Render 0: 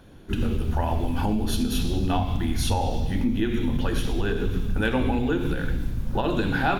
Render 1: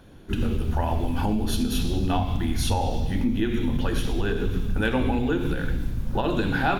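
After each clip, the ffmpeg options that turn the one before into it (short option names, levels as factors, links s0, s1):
-af anull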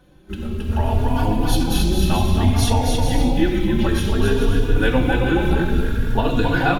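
-filter_complex "[0:a]aecho=1:1:270|432|529.2|587.5|622.5:0.631|0.398|0.251|0.158|0.1,dynaudnorm=f=240:g=7:m=3.76,asplit=2[s0][s1];[s1]adelay=3.5,afreqshift=0.58[s2];[s0][s2]amix=inputs=2:normalize=1"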